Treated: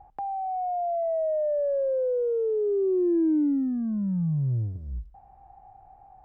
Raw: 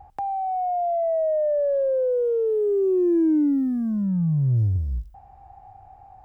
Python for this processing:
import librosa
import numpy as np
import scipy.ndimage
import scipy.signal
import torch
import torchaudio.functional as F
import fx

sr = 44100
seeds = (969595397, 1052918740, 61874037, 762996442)

y = fx.lowpass(x, sr, hz=1400.0, slope=6)
y = fx.peak_eq(y, sr, hz=86.0, db=-13.5, octaves=0.46)
y = y * librosa.db_to_amplitude(-3.0)